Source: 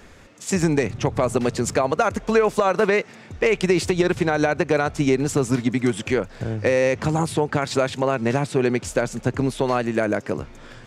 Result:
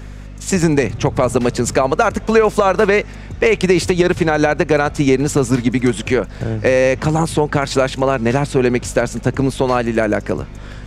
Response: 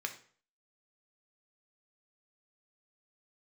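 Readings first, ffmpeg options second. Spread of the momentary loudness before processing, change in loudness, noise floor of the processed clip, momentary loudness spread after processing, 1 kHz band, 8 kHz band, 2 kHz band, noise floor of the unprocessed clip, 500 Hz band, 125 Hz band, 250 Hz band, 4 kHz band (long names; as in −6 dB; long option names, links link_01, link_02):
5 LU, +5.5 dB, −32 dBFS, 5 LU, +5.5 dB, +5.5 dB, +5.5 dB, −46 dBFS, +5.5 dB, +6.0 dB, +5.5 dB, +5.5 dB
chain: -af "aeval=exprs='val(0)+0.0141*(sin(2*PI*50*n/s)+sin(2*PI*2*50*n/s)/2+sin(2*PI*3*50*n/s)/3+sin(2*PI*4*50*n/s)/4+sin(2*PI*5*50*n/s)/5)':channel_layout=same,volume=5.5dB"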